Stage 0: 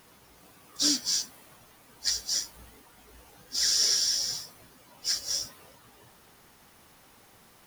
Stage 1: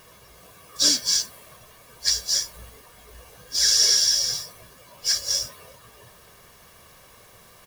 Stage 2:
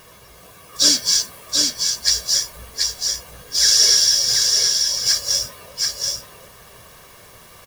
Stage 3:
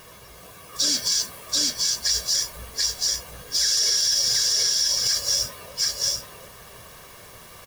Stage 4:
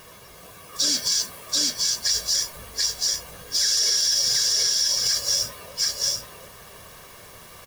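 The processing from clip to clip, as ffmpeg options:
-af "aecho=1:1:1.8:0.58,volume=1.78"
-af "aecho=1:1:732:0.668,volume=1.68"
-af "alimiter=limit=0.237:level=0:latency=1:release=39"
-af "bandreject=f=60:t=h:w=6,bandreject=f=120:t=h:w=6"

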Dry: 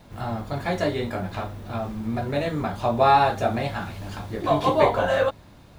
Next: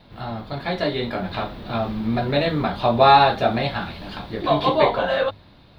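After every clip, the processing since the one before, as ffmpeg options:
-af "dynaudnorm=f=250:g=11:m=3.76,highshelf=f=5300:t=q:w=3:g=-9.5,bandreject=f=50:t=h:w=6,bandreject=f=100:t=h:w=6,volume=0.891"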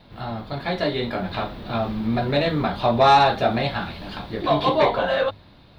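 -af "asoftclip=type=tanh:threshold=0.473"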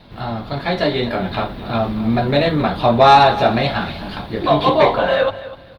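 -af "aecho=1:1:249|498|747:0.168|0.0436|0.0113,volume=1.88" -ar 48000 -c:a libopus -b:a 48k

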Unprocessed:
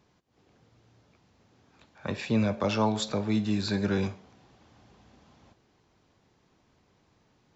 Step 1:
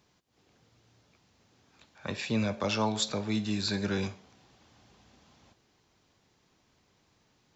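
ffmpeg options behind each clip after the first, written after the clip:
-af "highshelf=f=2200:g=8.5,volume=0.631"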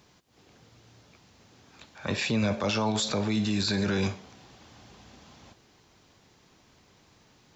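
-af "alimiter=level_in=1.5:limit=0.0631:level=0:latency=1:release=29,volume=0.668,volume=2.66"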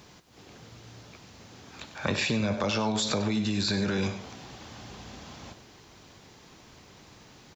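-af "acompressor=threshold=0.0251:ratio=10,aecho=1:1:97:0.237,volume=2.37"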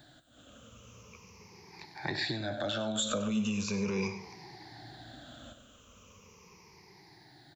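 -filter_complex "[0:a]afftfilt=real='re*pow(10,19/40*sin(2*PI*(0.81*log(max(b,1)*sr/1024/100)/log(2)-(-0.39)*(pts-256)/sr)))':imag='im*pow(10,19/40*sin(2*PI*(0.81*log(max(b,1)*sr/1024/100)/log(2)-(-0.39)*(pts-256)/sr)))':win_size=1024:overlap=0.75,acrossover=split=160[s0][s1];[s0]asoftclip=type=tanh:threshold=0.02[s2];[s2][s1]amix=inputs=2:normalize=0,volume=0.376"

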